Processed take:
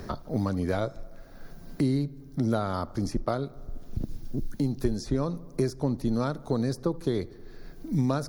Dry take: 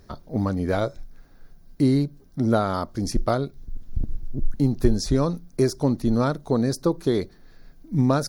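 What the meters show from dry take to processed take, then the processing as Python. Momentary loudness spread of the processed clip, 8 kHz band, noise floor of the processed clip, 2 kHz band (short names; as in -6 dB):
12 LU, -8.5 dB, -47 dBFS, -5.5 dB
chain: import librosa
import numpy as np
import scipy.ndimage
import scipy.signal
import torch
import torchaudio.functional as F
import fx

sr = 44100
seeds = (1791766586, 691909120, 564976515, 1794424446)

p1 = x + fx.echo_filtered(x, sr, ms=76, feedback_pct=67, hz=2800.0, wet_db=-23.5, dry=0)
p2 = fx.band_squash(p1, sr, depth_pct=70)
y = p2 * 10.0 ** (-6.0 / 20.0)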